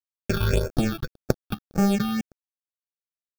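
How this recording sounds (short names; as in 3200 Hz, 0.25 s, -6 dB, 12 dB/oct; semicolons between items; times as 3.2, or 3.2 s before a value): aliases and images of a low sample rate 1000 Hz, jitter 0%; tremolo saw up 1.7 Hz, depth 45%; a quantiser's noise floor 8-bit, dither none; phasing stages 6, 1.8 Hz, lowest notch 520–3500 Hz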